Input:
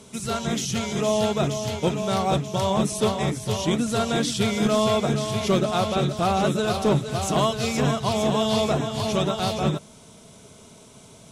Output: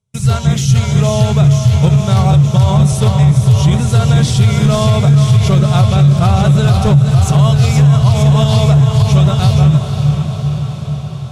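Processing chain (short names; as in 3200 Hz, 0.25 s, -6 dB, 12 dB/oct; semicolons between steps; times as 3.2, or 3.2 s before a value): gate -36 dBFS, range -40 dB; resonant low shelf 180 Hz +13 dB, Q 3; on a send: diffused feedback echo 0.512 s, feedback 65%, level -10 dB; on the sum: maximiser +7.5 dB; gain -1 dB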